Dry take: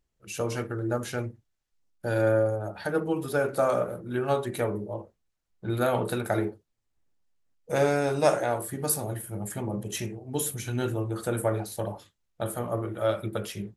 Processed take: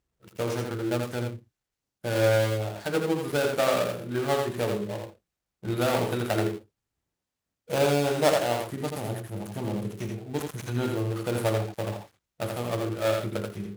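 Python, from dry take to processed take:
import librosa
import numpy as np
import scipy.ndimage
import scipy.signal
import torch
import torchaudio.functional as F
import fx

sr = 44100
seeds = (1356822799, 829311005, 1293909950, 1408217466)

p1 = fx.dead_time(x, sr, dead_ms=0.21)
p2 = scipy.signal.sosfilt(scipy.signal.butter(2, 45.0, 'highpass', fs=sr, output='sos'), p1)
y = p2 + fx.echo_single(p2, sr, ms=83, db=-4.5, dry=0)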